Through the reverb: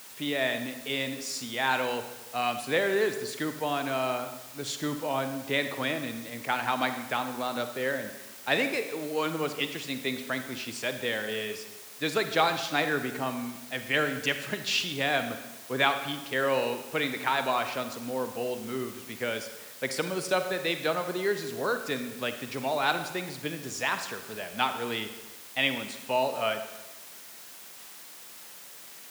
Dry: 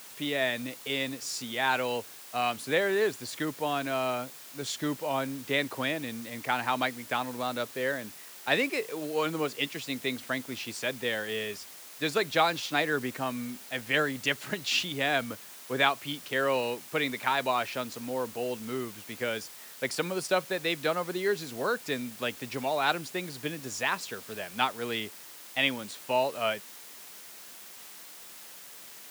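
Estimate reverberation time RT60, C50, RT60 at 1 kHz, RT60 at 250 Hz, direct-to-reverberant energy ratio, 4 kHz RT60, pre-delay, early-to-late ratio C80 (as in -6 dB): 1.1 s, 9.0 dB, 1.1 s, 1.1 s, 8.0 dB, 0.95 s, 38 ms, 10.5 dB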